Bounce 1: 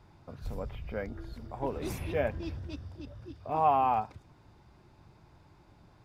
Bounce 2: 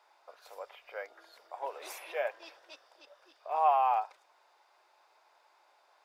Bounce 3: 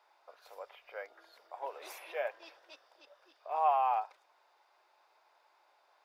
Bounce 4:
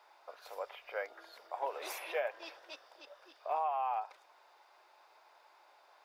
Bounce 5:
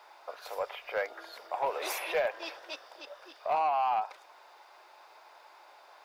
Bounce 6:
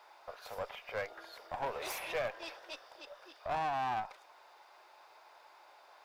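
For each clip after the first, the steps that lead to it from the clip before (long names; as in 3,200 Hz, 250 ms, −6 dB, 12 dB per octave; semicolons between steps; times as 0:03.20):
inverse Chebyshev high-pass filter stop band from 220 Hz, stop band 50 dB
parametric band 8,000 Hz −4.5 dB 0.85 octaves; level −2.5 dB
downward compressor 16 to 1, threshold −36 dBFS, peak gain reduction 13.5 dB; level +5.5 dB
soft clipping −29.5 dBFS, distortion −16 dB; level +8 dB
one-sided soft clipper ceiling −33 dBFS; level −3.5 dB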